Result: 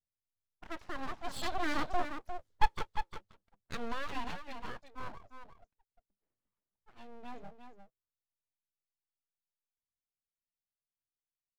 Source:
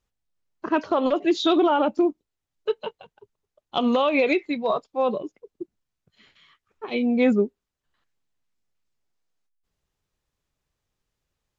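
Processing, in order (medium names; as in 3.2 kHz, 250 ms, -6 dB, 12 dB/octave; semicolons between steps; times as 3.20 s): Doppler pass-by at 2.49 s, 9 m/s, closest 1.8 m; level-controlled noise filter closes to 530 Hz, open at -49.5 dBFS; graphic EQ with 31 bands 100 Hz +11 dB, 200 Hz -3 dB, 315 Hz -8 dB, 500 Hz +3 dB, 800 Hz -4 dB, 2.5 kHz -9 dB; delay 353 ms -8 dB; full-wave rectifier; trim +3.5 dB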